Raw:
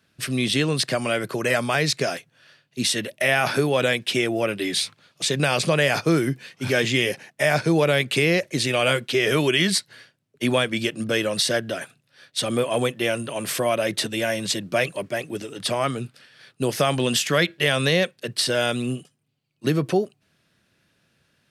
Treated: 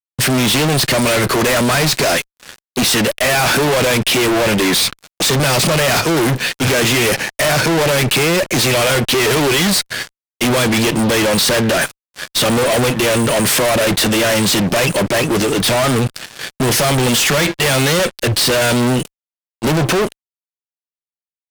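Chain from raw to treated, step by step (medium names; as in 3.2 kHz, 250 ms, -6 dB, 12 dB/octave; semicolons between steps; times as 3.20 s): 17.99–18.43 s: resonant low shelf 120 Hz +6 dB, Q 3; fuzz box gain 42 dB, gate -49 dBFS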